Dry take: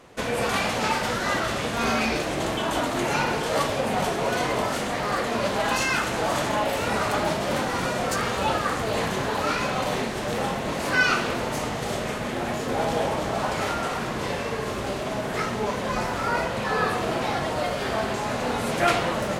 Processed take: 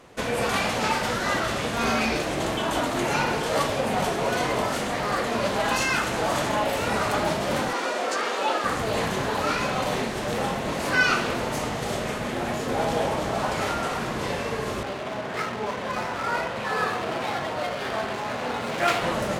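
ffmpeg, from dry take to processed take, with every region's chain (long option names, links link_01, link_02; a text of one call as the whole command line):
ffmpeg -i in.wav -filter_complex "[0:a]asettb=1/sr,asplit=3[link_01][link_02][link_03];[link_01]atrim=end=7.734[link_04];[link_02]atrim=start=7.73:end=8.64,asetpts=PTS-STARTPTS,afade=type=in:duration=0.004:curve=qsin,afade=type=out:start_time=0.906:duration=0.004:curve=qsin,highpass=frequency=290:width=0.5412,highpass=frequency=290:width=1.3066,acrossover=split=8000[link_05][link_06];[link_06]acompressor=threshold=-53dB:ratio=4:attack=1:release=60[link_07];[link_05][link_07]amix=inputs=2:normalize=0[link_08];[link_03]atrim=start=8.636[link_09];[link_04][link_08]acrossfade=duration=0.004:curve1=hsin:curve2=qsin[link_10];[link_10][link_09]acrossfade=duration=0.004:curve1=qsin:curve2=hsin,asettb=1/sr,asplit=3[link_11][link_12][link_13];[link_11]atrim=end=14.834[link_14];[link_12]atrim=start=14.83:end=19.03,asetpts=PTS-STARTPTS,afade=type=in:duration=0.004:curve=qsin,afade=type=out:start_time=4.196:duration=0.004:curve=qsin,highpass=68,lowshelf=frequency=480:gain=-6,adynamicsmooth=sensitivity=8:basefreq=2100[link_15];[link_13]atrim=start=19.026[link_16];[link_14][link_15]acrossfade=duration=0.004:curve1=hsin:curve2=qsin[link_17];[link_17][link_16]acrossfade=duration=0.004:curve1=qsin:curve2=hsin" out.wav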